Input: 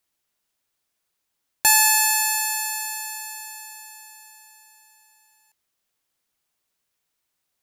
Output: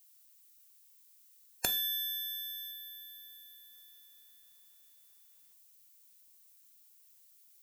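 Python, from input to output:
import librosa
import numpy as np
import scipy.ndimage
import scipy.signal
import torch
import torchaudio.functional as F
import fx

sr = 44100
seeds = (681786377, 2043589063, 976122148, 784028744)

y = fx.spec_gate(x, sr, threshold_db=-15, keep='weak')
y = fx.graphic_eq_15(y, sr, hz=(100, 250, 6300), db=(6, 7, -10), at=(2.71, 3.73))
y = fx.dmg_noise_colour(y, sr, seeds[0], colour='violet', level_db=-63.0)
y = fx.rev_double_slope(y, sr, seeds[1], early_s=0.46, late_s=2.6, knee_db=-28, drr_db=9.0)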